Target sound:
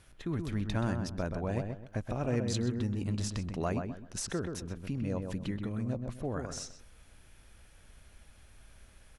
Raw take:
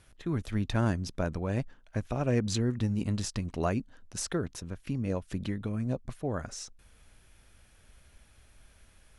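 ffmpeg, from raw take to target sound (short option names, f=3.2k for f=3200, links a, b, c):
-filter_complex "[0:a]asettb=1/sr,asplit=3[a][b][c];[a]atrim=end=1.364[d];[b]atrim=start=1.36:end=2.07,asetpts=PTS-STARTPTS,afade=t=in:d=0.004:c=qsin,afade=t=out:st=0.706:d=0.004:c=qsin,equalizer=f=710:t=o:w=0.45:g=6.5[e];[c]atrim=start=2.066[f];[d][e]acrossfade=d=0.004:c1=hsin:c2=qsin[g];[g][f]acrossfade=d=0.004:c1=qsin:c2=hsin,asplit=2[h][i];[i]acompressor=threshold=-38dB:ratio=6,volume=1dB[j];[h][j]amix=inputs=2:normalize=0,asplit=2[k][l];[l]adelay=128,lowpass=f=1.8k:p=1,volume=-5dB,asplit=2[m][n];[n]adelay=128,lowpass=f=1.8k:p=1,volume=0.3,asplit=2[o][p];[p]adelay=128,lowpass=f=1.8k:p=1,volume=0.3,asplit=2[q][r];[r]adelay=128,lowpass=f=1.8k:p=1,volume=0.3[s];[k][m][o][q][s]amix=inputs=5:normalize=0,volume=-6dB"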